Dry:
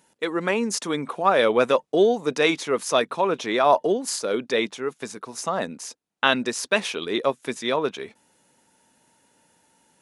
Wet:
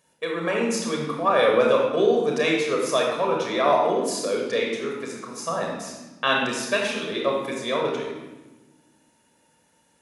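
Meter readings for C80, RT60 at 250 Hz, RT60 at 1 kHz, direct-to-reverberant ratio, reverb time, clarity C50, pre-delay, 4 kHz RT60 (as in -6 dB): 4.5 dB, 1.9 s, 1.1 s, -1.0 dB, 1.2 s, 2.0 dB, 30 ms, 0.95 s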